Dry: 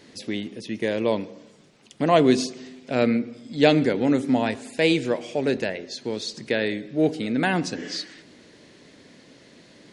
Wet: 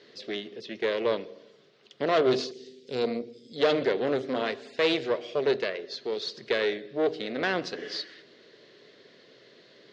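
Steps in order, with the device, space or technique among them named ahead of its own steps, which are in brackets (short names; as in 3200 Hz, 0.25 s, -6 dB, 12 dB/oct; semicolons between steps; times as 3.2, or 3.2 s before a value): 2.51–3.56 EQ curve 490 Hz 0 dB, 720 Hz -27 dB, 9900 Hz +13 dB; guitar amplifier (tube stage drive 19 dB, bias 0.75; tone controls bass -15 dB, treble +6 dB; speaker cabinet 82–4200 Hz, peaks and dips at 130 Hz +8 dB, 280 Hz -6 dB, 410 Hz +7 dB, 860 Hz -9 dB, 2400 Hz -5 dB); gain +2.5 dB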